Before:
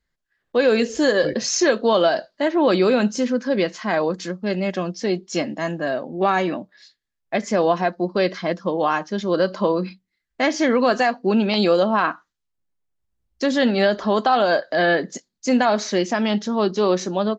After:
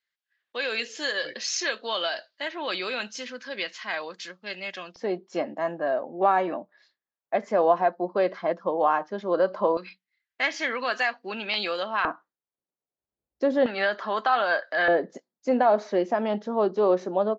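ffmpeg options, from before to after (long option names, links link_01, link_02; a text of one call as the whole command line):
ffmpeg -i in.wav -af "asetnsamples=nb_out_samples=441:pad=0,asendcmd='4.96 bandpass f 780;9.77 bandpass f 2300;12.05 bandpass f 550;13.66 bandpass f 1600;14.88 bandpass f 620',bandpass=frequency=2900:width_type=q:width=1.1:csg=0" out.wav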